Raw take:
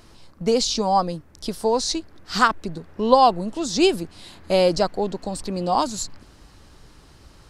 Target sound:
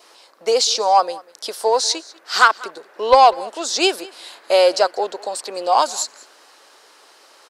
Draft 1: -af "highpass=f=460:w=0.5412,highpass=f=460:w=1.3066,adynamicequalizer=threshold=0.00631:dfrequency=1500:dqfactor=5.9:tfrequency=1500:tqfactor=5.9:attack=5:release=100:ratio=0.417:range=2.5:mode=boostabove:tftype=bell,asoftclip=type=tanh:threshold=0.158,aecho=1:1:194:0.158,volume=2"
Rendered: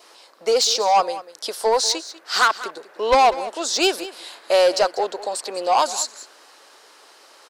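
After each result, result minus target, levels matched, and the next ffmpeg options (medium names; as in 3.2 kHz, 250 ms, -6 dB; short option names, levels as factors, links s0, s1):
saturation: distortion +9 dB; echo-to-direct +6 dB
-af "highpass=f=460:w=0.5412,highpass=f=460:w=1.3066,adynamicequalizer=threshold=0.00631:dfrequency=1500:dqfactor=5.9:tfrequency=1500:tqfactor=5.9:attack=5:release=100:ratio=0.417:range=2.5:mode=boostabove:tftype=bell,asoftclip=type=tanh:threshold=0.447,aecho=1:1:194:0.158,volume=2"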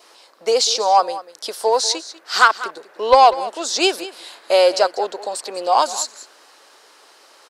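echo-to-direct +6 dB
-af "highpass=f=460:w=0.5412,highpass=f=460:w=1.3066,adynamicequalizer=threshold=0.00631:dfrequency=1500:dqfactor=5.9:tfrequency=1500:tqfactor=5.9:attack=5:release=100:ratio=0.417:range=2.5:mode=boostabove:tftype=bell,asoftclip=type=tanh:threshold=0.447,aecho=1:1:194:0.0794,volume=2"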